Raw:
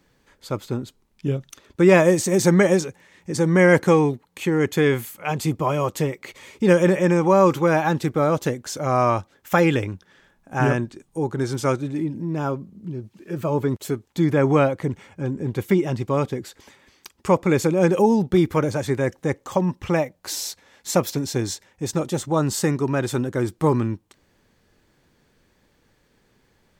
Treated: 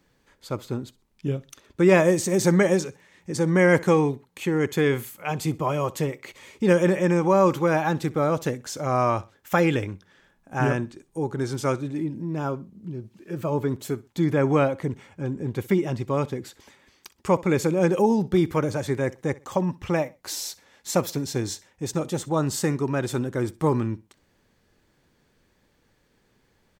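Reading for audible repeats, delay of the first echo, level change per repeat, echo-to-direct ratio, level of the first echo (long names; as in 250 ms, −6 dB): 2, 63 ms, −11.5 dB, −20.5 dB, −21.0 dB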